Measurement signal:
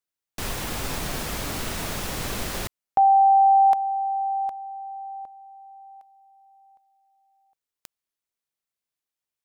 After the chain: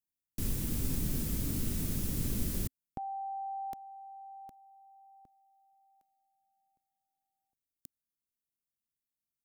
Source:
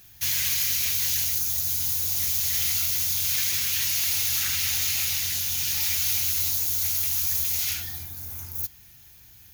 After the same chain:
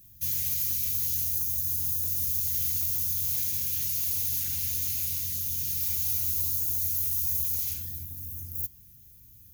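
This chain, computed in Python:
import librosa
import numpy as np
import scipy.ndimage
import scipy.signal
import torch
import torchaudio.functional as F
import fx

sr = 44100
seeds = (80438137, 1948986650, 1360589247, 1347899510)

y = fx.curve_eq(x, sr, hz=(260.0, 770.0, 4100.0, 13000.0), db=(0, -23, -14, -2))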